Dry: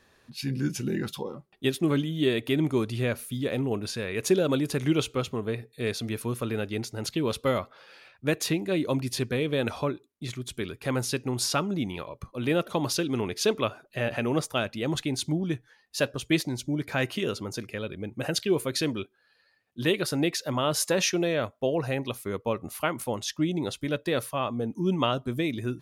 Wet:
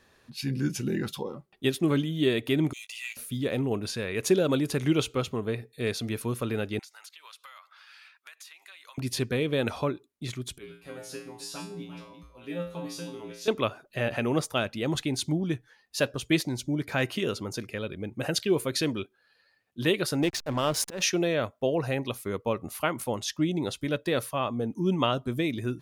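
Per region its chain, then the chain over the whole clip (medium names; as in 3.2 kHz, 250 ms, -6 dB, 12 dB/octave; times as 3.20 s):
2.73–3.17 s: rippled Chebyshev high-pass 1.9 kHz, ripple 9 dB + waveshaping leveller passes 2 + doubling 19 ms -12 dB
6.79–8.98 s: high-pass 1.1 kHz 24 dB/octave + compression 8:1, threshold -45 dBFS
10.58–13.48 s: chunks repeated in reverse 234 ms, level -9.5 dB + feedback comb 58 Hz, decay 0.42 s, harmonics odd, mix 100%
20.22–21.02 s: hysteresis with a dead band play -31 dBFS + slow attack 187 ms
whole clip: none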